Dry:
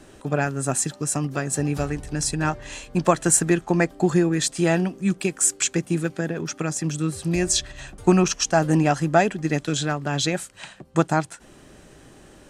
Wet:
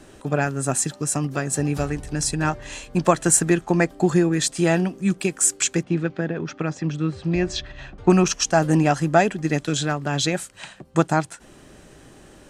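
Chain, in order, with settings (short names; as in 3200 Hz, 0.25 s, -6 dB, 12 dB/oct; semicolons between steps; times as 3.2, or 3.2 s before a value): 5.83–8.1 Bessel low-pass 3300 Hz, order 4; gain +1 dB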